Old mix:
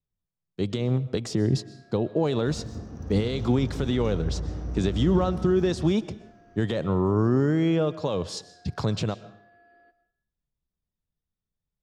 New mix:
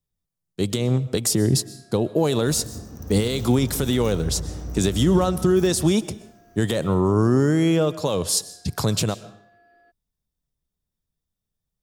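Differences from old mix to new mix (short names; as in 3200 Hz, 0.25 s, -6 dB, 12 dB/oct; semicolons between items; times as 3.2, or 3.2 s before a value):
speech +3.5 dB; first sound: send off; master: remove air absorption 160 m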